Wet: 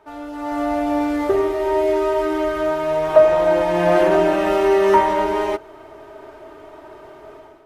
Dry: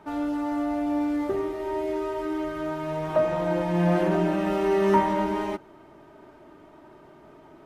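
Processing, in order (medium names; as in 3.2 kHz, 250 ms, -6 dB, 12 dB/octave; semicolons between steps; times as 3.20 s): peaking EQ 190 Hz -14.5 dB 1.1 oct; level rider gain up to 12 dB; small resonant body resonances 420/640 Hz, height 8 dB, ringing for 90 ms; trim -1.5 dB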